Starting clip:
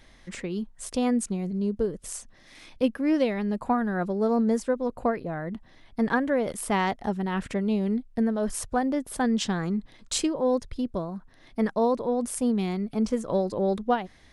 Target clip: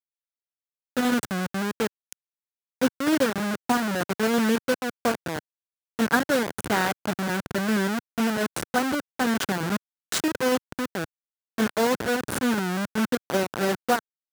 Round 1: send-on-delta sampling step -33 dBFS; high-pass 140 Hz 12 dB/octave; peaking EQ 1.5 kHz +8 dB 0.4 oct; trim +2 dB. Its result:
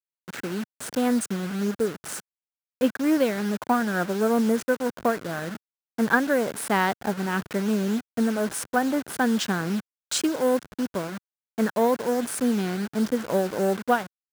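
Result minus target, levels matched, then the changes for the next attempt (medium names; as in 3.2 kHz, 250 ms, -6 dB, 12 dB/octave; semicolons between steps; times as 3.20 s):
send-on-delta sampling: distortion -13 dB
change: send-on-delta sampling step -22 dBFS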